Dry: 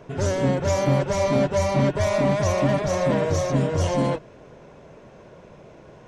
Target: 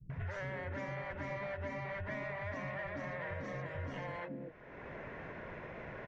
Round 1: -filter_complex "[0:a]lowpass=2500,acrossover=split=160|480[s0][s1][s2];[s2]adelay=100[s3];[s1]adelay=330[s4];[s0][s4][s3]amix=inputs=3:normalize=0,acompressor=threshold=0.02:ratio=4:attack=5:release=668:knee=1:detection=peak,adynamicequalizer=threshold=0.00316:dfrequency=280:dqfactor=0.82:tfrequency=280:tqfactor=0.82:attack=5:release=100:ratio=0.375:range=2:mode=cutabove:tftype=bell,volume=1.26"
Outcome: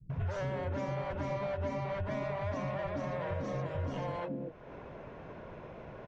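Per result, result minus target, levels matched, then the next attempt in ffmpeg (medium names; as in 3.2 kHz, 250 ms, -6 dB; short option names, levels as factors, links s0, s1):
2 kHz band -9.0 dB; compression: peak gain reduction -7 dB
-filter_complex "[0:a]lowpass=2500,equalizer=f=1900:t=o:w=0.65:g=13.5,acrossover=split=160|480[s0][s1][s2];[s2]adelay=100[s3];[s1]adelay=330[s4];[s0][s4][s3]amix=inputs=3:normalize=0,acompressor=threshold=0.02:ratio=4:attack=5:release=668:knee=1:detection=peak,adynamicequalizer=threshold=0.00316:dfrequency=280:dqfactor=0.82:tfrequency=280:tqfactor=0.82:attack=5:release=100:ratio=0.375:range=2:mode=cutabove:tftype=bell,volume=1.26"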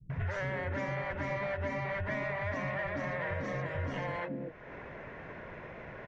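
compression: peak gain reduction -6 dB
-filter_complex "[0:a]lowpass=2500,equalizer=f=1900:t=o:w=0.65:g=13.5,acrossover=split=160|480[s0][s1][s2];[s2]adelay=100[s3];[s1]adelay=330[s4];[s0][s4][s3]amix=inputs=3:normalize=0,acompressor=threshold=0.00794:ratio=4:attack=5:release=668:knee=1:detection=peak,adynamicequalizer=threshold=0.00316:dfrequency=280:dqfactor=0.82:tfrequency=280:tqfactor=0.82:attack=5:release=100:ratio=0.375:range=2:mode=cutabove:tftype=bell,volume=1.26"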